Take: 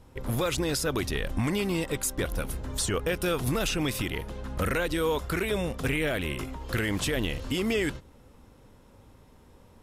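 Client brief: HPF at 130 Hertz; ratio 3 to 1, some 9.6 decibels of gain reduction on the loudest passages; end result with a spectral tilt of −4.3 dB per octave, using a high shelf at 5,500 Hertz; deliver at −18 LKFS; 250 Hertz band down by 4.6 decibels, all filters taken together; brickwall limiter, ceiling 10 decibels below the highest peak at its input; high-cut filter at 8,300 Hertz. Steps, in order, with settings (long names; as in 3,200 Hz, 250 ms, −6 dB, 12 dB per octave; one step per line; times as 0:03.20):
high-pass filter 130 Hz
low-pass filter 8,300 Hz
parametric band 250 Hz −6 dB
high-shelf EQ 5,500 Hz −6 dB
downward compressor 3 to 1, threshold −39 dBFS
level +26.5 dB
brickwall limiter −8.5 dBFS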